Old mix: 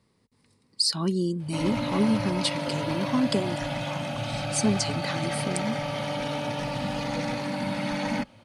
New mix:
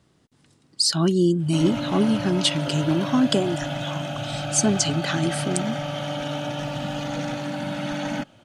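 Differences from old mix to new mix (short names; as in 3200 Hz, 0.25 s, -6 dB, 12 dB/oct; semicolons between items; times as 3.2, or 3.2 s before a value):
speech +6.0 dB; master: remove ripple EQ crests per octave 0.91, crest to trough 8 dB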